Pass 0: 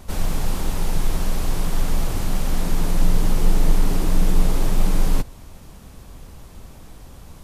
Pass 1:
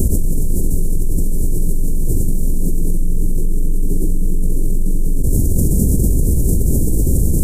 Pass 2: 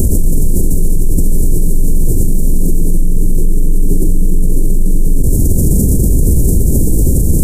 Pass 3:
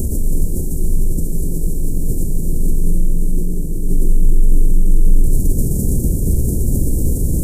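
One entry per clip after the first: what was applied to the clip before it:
Chebyshev band-stop filter 400–7,800 Hz, order 3; envelope flattener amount 100%; level −3.5 dB
boost into a limiter +11 dB; level −1 dB
convolution reverb RT60 5.4 s, pre-delay 17 ms, DRR 2 dB; level −8.5 dB

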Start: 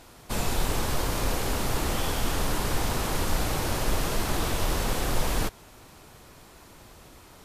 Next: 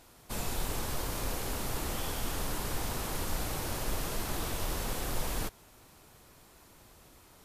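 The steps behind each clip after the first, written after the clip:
high-shelf EQ 9,200 Hz +7 dB
level −8 dB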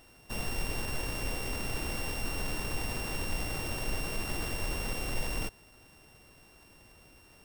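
samples sorted by size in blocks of 16 samples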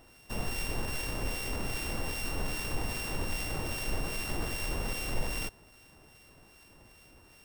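two-band tremolo in antiphase 2.5 Hz, depth 50%, crossover 1,500 Hz
level +2.5 dB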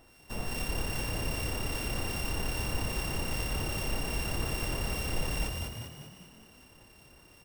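echo with shifted repeats 198 ms, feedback 51%, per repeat +34 Hz, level −3 dB
level −1.5 dB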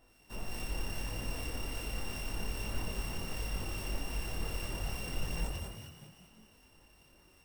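multi-voice chorus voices 6, 1.5 Hz, delay 21 ms, depth 3 ms
level −3.5 dB

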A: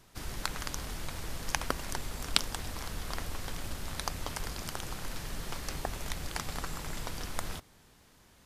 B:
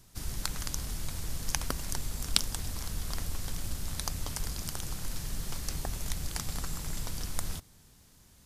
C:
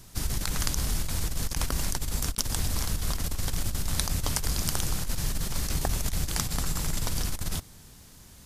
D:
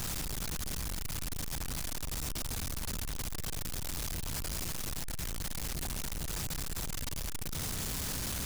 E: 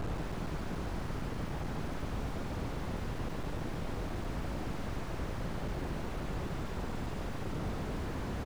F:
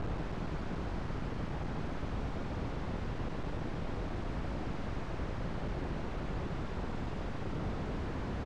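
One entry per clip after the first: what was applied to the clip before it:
bass and treble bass +9 dB, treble +10 dB; level −5 dB
compressor whose output falls as the input rises −33 dBFS, ratio −0.5; level +7 dB
sign of each sample alone; level −8 dB
echo with shifted repeats 144 ms, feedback 62%, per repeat −58 Hz, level −8.5 dB; mid-hump overdrive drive 26 dB, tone 1,200 Hz, clips at −25 dBFS; slew-rate limiting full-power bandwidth 9.5 Hz; level +1 dB
high-frequency loss of the air 93 metres

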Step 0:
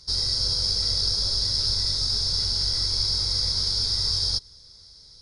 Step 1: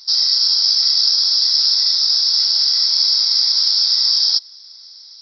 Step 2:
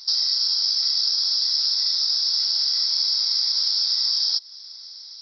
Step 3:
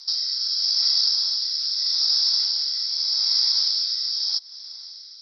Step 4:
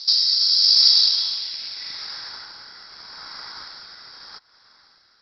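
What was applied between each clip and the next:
brick-wall band-pass 760–5,900 Hz; high-shelf EQ 3,300 Hz +11.5 dB; level +2 dB
downward compressor 2.5 to 1, threshold −22 dBFS, peak gain reduction 7.5 dB
rotating-speaker cabinet horn 0.8 Hz; level +2 dB
in parallel at −5.5 dB: log-companded quantiser 4 bits; on the sum: low-pass filter sweep 4,300 Hz → 1,500 Hz, 0:00.85–0:02.47; level −1.5 dB

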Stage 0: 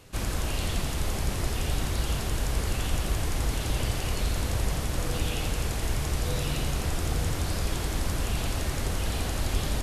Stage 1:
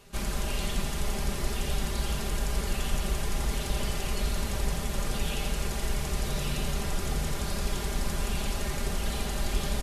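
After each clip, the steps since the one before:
comb filter 5 ms, depth 71%
level −3 dB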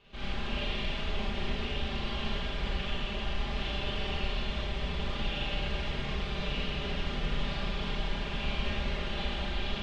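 brickwall limiter −23 dBFS, peak gain reduction 8 dB
transistor ladder low-pass 3,800 Hz, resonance 45%
four-comb reverb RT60 1.6 s, combs from 29 ms, DRR −8 dB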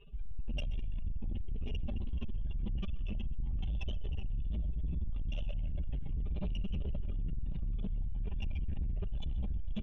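expanding power law on the bin magnitudes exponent 3
soft clipping −37.5 dBFS, distortion −9 dB
single-tap delay 128 ms −20 dB
level +6.5 dB

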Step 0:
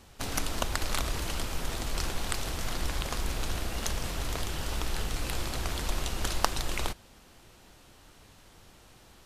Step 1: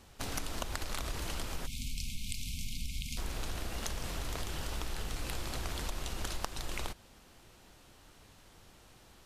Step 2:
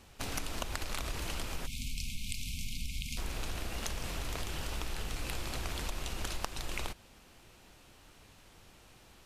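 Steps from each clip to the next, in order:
time-frequency box erased 0:01.67–0:03.17, 260–2,100 Hz; downward compressor 6 to 1, threshold −29 dBFS, peak gain reduction 11 dB; level −3 dB
parametric band 2,500 Hz +3.5 dB 0.45 octaves

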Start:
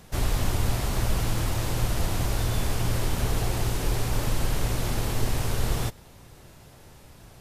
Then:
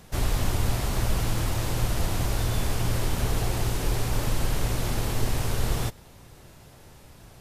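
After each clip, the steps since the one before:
no processing that can be heard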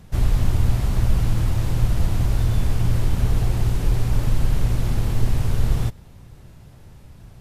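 bass and treble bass +10 dB, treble −3 dB
level −2.5 dB

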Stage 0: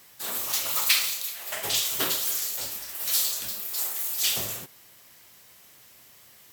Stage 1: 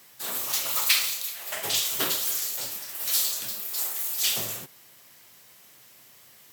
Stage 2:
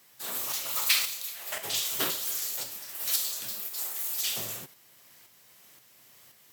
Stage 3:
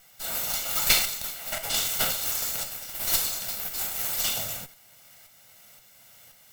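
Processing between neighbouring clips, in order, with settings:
high-pass filter 96 Hz 24 dB per octave
shaped tremolo saw up 1.9 Hz, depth 45%; level −1.5 dB
lower of the sound and its delayed copy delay 1.4 ms; level +5 dB

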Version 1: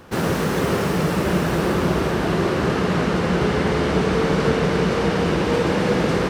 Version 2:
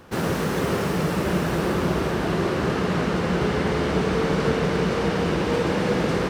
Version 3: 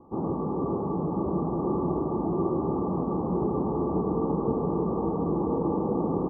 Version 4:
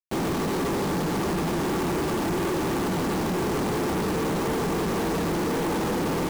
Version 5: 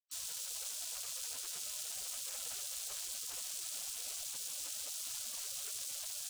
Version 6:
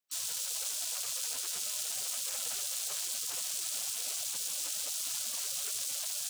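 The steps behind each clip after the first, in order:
floating-point word with a short mantissa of 6 bits; level −3 dB
Chebyshev low-pass with heavy ripple 1,200 Hz, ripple 9 dB; single-tap delay 983 ms −8.5 dB
log-companded quantiser 2 bits
gate on every frequency bin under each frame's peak −25 dB weak; octave-band graphic EQ 500/2,000/8,000 Hz +6/−12/+7 dB; level −4.5 dB
high-pass filter 100 Hz 24 dB per octave; level +6.5 dB

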